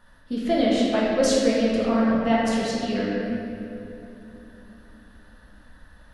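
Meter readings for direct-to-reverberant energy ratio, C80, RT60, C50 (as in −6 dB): −6.0 dB, −0.5 dB, 3.0 s, −2.0 dB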